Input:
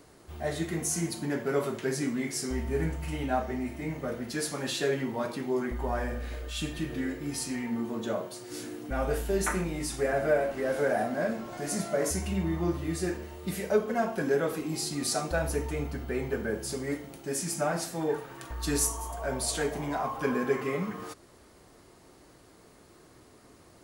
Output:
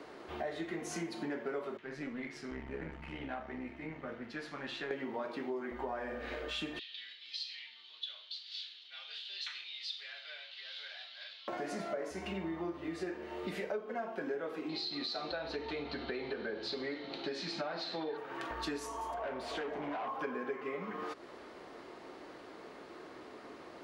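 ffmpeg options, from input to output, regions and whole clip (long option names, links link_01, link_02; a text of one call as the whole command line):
ffmpeg -i in.wav -filter_complex "[0:a]asettb=1/sr,asplit=3[link_01][link_02][link_03];[link_01]atrim=end=1.774[link_04];[link_02]atrim=start=1.77:end=4.91,asetpts=PTS-STARTPTS,afade=type=in:duration=0.004:curve=qsin,afade=type=out:start_time=3.136:duration=0.004:curve=qsin,lowpass=frequency=1300:poles=1,equalizer=frequency=480:width_type=o:width=2.5:gain=-14.5,aeval=exprs='(tanh(50.1*val(0)+0.6)-tanh(0.6))/50.1':channel_layout=same[link_05];[link_03]atrim=start=4.906[link_06];[link_04][link_05]acrossfade=duration=0.004:curve1=hsin:curve2=qsin[link_07];[link_07][link_06]acrossfade=duration=0.004:curve1=qsin:curve2=hsin,asettb=1/sr,asplit=3[link_08][link_09][link_10];[link_08]atrim=end=6.794[link_11];[link_09]atrim=start=6.79:end=11.48,asetpts=PTS-STARTPTS,afade=type=in:duration=0.004:curve=qsin,afade=type=out:start_time=4.686:duration=0.004:curve=qsin,asuperpass=centerf=3800:order=4:qfactor=2.9,acontrast=70[link_12];[link_10]atrim=start=11.476[link_13];[link_11][link_12]acrossfade=duration=0.004:curve1=hsin:curve2=qsin[link_14];[link_14][link_13]acrossfade=duration=0.004:curve1=qsin:curve2=hsin,asettb=1/sr,asplit=3[link_15][link_16][link_17];[link_15]atrim=end=14.694[link_18];[link_16]atrim=start=14.69:end=18.17,asetpts=PTS-STARTPTS,afade=type=in:duration=0.004:curve=qsin,afade=type=out:start_time=3.476:duration=0.004:curve=qsin,lowpass=frequency=4100:width_type=q:width=10,acompressor=threshold=-30dB:ratio=2:attack=3.2:release=140:knee=1:detection=peak[link_19];[link_17]atrim=start=18.166[link_20];[link_18][link_19]acrossfade=duration=0.004:curve1=hsin:curve2=qsin[link_21];[link_21][link_20]acrossfade=duration=0.004:curve1=qsin:curve2=hsin,asettb=1/sr,asplit=3[link_22][link_23][link_24];[link_22]atrim=end=19.144[link_25];[link_23]atrim=start=19.14:end=20.08,asetpts=PTS-STARTPTS,afade=type=in:duration=0.004:curve=qsin,afade=type=out:start_time=0.936:duration=0.004:curve=qsin,volume=32dB,asoftclip=hard,volume=-32dB,highshelf=frequency=5500:gain=-11[link_26];[link_24]atrim=start=20.076[link_27];[link_25][link_26]acrossfade=duration=0.004:curve1=hsin:curve2=qsin[link_28];[link_28][link_27]acrossfade=duration=0.004:curve1=qsin:curve2=hsin,acrossover=split=240 4200:gain=0.112 1 0.0708[link_29][link_30][link_31];[link_29][link_30][link_31]amix=inputs=3:normalize=0,acompressor=threshold=-45dB:ratio=6,volume=8dB" out.wav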